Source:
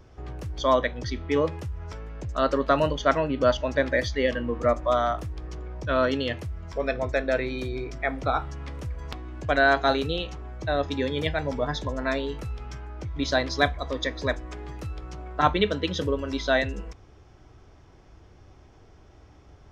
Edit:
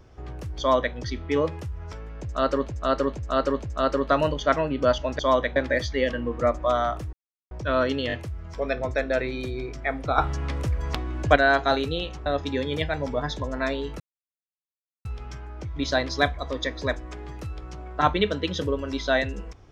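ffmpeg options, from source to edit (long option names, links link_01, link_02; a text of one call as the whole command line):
ffmpeg -i in.wav -filter_complex "[0:a]asplit=14[link_01][link_02][link_03][link_04][link_05][link_06][link_07][link_08][link_09][link_10][link_11][link_12][link_13][link_14];[link_01]atrim=end=2.682[link_15];[link_02]atrim=start=2.208:end=2.682[link_16];[link_03]atrim=start=2.208:end=2.682[link_17];[link_04]atrim=start=2.208:end=3.782[link_18];[link_05]atrim=start=0.588:end=0.962[link_19];[link_06]atrim=start=3.778:end=5.35,asetpts=PTS-STARTPTS,afade=type=out:start_time=1.568:duration=0.004:curve=hsin[link_20];[link_07]atrim=start=5.35:end=5.73,asetpts=PTS-STARTPTS,volume=0[link_21];[link_08]atrim=start=5.73:end=6.322,asetpts=PTS-STARTPTS,afade=type=in:duration=0.004:curve=hsin[link_22];[link_09]atrim=start=6.298:end=6.322[link_23];[link_10]atrim=start=6.298:end=8.362[link_24];[link_11]atrim=start=8.358:end=9.542,asetpts=PTS-STARTPTS,volume=7.5dB[link_25];[link_12]atrim=start=9.538:end=10.442[link_26];[link_13]atrim=start=10.708:end=12.45,asetpts=PTS-STARTPTS,afade=type=out:start_time=1.738:duration=0.004:curve=hsin,apad=pad_dur=1.05[link_27];[link_14]atrim=start=12.45,asetpts=PTS-STARTPTS,afade=type=in:duration=0.004:curve=hsin[link_28];[link_15][link_16]acrossfade=duration=0.004:curve1=hsin:curve2=hsin[link_29];[link_29][link_17]acrossfade=duration=0.004:curve1=hsin:curve2=hsin[link_30];[link_30][link_18]acrossfade=duration=0.004:curve1=hsin:curve2=hsin[link_31];[link_31][link_19]acrossfade=duration=0.004:curve1=hsin:curve2=hsin[link_32];[link_20][link_21][link_22]concat=n=3:v=0:a=1[link_33];[link_32][link_33]acrossfade=duration=0.004:curve1=hsin:curve2=hsin[link_34];[link_34][link_23]acrossfade=duration=0.004:curve1=hsin:curve2=hsin[link_35];[link_35][link_24]acrossfade=duration=0.004:curve1=hsin:curve2=hsin[link_36];[link_36][link_25]acrossfade=duration=0.004:curve1=hsin:curve2=hsin[link_37];[link_37][link_26]acrossfade=duration=0.004:curve1=hsin:curve2=hsin[link_38];[link_27][link_28]concat=n=2:v=0:a=1[link_39];[link_38][link_39]acrossfade=duration=0.004:curve1=hsin:curve2=hsin" out.wav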